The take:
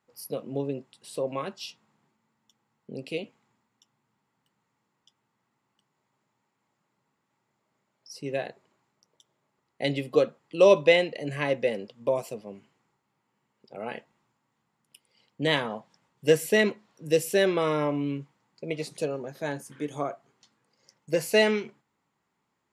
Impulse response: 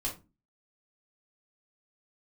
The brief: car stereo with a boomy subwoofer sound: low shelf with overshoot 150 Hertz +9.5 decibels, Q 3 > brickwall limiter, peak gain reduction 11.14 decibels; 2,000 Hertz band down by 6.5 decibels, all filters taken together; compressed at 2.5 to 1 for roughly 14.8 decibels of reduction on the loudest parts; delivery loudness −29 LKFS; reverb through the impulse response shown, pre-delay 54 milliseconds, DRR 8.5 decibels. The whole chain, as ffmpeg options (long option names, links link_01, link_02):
-filter_complex "[0:a]equalizer=frequency=2000:width_type=o:gain=-7.5,acompressor=threshold=-37dB:ratio=2.5,asplit=2[link_01][link_02];[1:a]atrim=start_sample=2205,adelay=54[link_03];[link_02][link_03]afir=irnorm=-1:irlink=0,volume=-11dB[link_04];[link_01][link_04]amix=inputs=2:normalize=0,lowshelf=frequency=150:width_type=q:width=3:gain=9.5,volume=13dB,alimiter=limit=-19dB:level=0:latency=1"